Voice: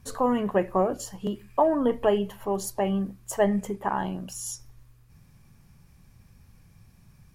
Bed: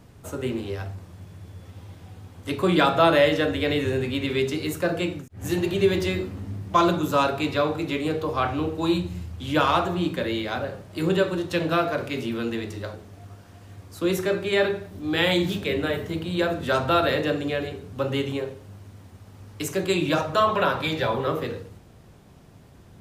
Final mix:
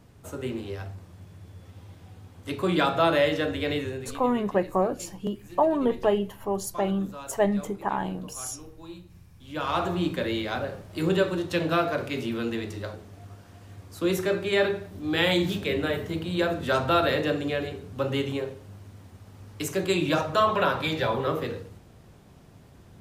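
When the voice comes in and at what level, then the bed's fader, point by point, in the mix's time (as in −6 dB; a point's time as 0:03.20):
4.00 s, −0.5 dB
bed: 0:03.76 −4 dB
0:04.33 −20 dB
0:09.32 −20 dB
0:09.86 −1.5 dB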